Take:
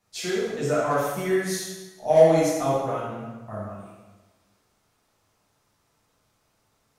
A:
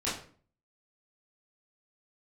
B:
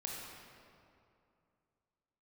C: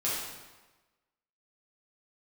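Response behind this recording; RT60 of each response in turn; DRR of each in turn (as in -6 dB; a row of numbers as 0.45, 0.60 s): C; 0.45, 2.6, 1.2 s; -10.0, -2.5, -8.5 dB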